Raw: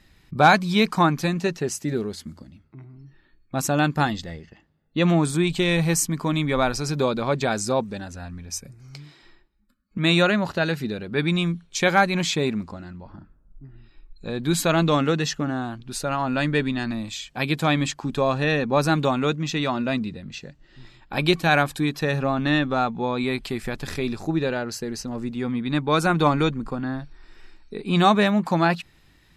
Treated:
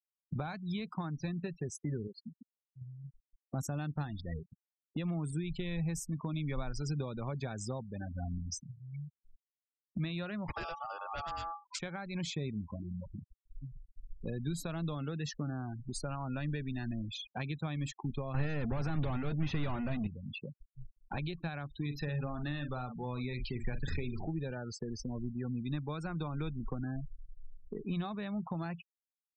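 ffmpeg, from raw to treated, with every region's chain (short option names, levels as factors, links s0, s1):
-filter_complex "[0:a]asettb=1/sr,asplit=3[s0][s1][s2];[s0]atrim=end=2.074[s3];[s1]atrim=start=2.07:end=2.81,asetpts=PTS-STARTPTS,afade=t=in:d=0.004:c=qsin,afade=t=out:st=0.736:d=0.004:c=qsin,lowshelf=f=420:g=-8,bandreject=f=50:t=h:w=6,bandreject=f=100:t=h:w=6,bandreject=f=150:t=h:w=6[s4];[s2]atrim=start=2.806[s5];[s3][s4]acrossfade=d=0.004:c1=hsin:c2=qsin[s6];[s6][s5]acrossfade=d=0.004:c1=qsin:c2=hsin,asettb=1/sr,asplit=3[s7][s8][s9];[s7]atrim=end=10.484[s10];[s8]atrim=start=10.48:end=11.79,asetpts=PTS-STARTPTS,afade=t=in:d=0.004:c=qsin,afade=t=out:st=1.306:d=0.004:c=qsin,equalizer=f=100:t=o:w=0.78:g=6,aeval=exprs='0.335*sin(PI/2*2.24*val(0)/0.335)':c=same,aeval=exprs='val(0)*sin(2*PI*1000*n/s)':c=same[s11];[s9]atrim=start=11.786[s12];[s10][s11]acrossfade=d=0.004:c1=hsin:c2=qsin[s13];[s13][s12]acrossfade=d=0.004:c1=qsin:c2=hsin,asettb=1/sr,asplit=3[s14][s15][s16];[s14]atrim=end=18.344[s17];[s15]atrim=start=18.34:end=20.07,asetpts=PTS-STARTPTS,afade=t=in:d=0.004:c=qsin,afade=t=out:st=1.726:d=0.004:c=qsin,highshelf=f=5700:g=-6,asplit=2[s18][s19];[s19]highpass=f=720:p=1,volume=35.5,asoftclip=type=tanh:threshold=0.355[s20];[s18][s20]amix=inputs=2:normalize=0,lowpass=f=1600:p=1,volume=0.501[s21];[s16]atrim=start=20.066[s22];[s17][s21]acrossfade=d=0.004:c1=hsin:c2=qsin[s23];[s23][s22]acrossfade=d=0.004:c1=qsin:c2=hsin,asettb=1/sr,asplit=3[s24][s25][s26];[s24]atrim=end=21.814[s27];[s25]atrim=start=21.81:end=24.29,asetpts=PTS-STARTPTS,afade=t=in:d=0.004:c=qsin,afade=t=out:st=2.476:d=0.004:c=qsin,aeval=exprs='val(0)+0.5*0.0237*sgn(val(0))':c=same,equalizer=f=230:w=0.36:g=-3,asplit=2[s28][s29];[s29]adelay=48,volume=0.376[s30];[s28][s30]amix=inputs=2:normalize=0,atrim=end_sample=109368[s31];[s26]atrim=start=24.286[s32];[s27][s31]acrossfade=d=0.004:c1=hsin:c2=qsin[s33];[s33][s32]acrossfade=d=0.004:c1=qsin:c2=hsin,afftfilt=real='re*gte(hypot(re,im),0.0447)':imag='im*gte(hypot(re,im),0.0447)':win_size=1024:overlap=0.75,alimiter=limit=0.188:level=0:latency=1:release=295,acrossover=split=120[s34][s35];[s35]acompressor=threshold=0.0112:ratio=8[s36];[s34][s36]amix=inputs=2:normalize=0"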